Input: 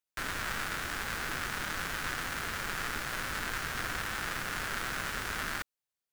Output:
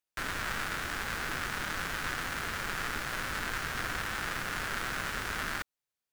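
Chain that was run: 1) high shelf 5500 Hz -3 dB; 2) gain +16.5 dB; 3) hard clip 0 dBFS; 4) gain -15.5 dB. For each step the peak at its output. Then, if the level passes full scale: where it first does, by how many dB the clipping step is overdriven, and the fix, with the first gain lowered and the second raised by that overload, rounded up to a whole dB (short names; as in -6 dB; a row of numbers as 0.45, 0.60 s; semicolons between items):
-19.5, -3.0, -3.0, -18.5 dBFS; no overload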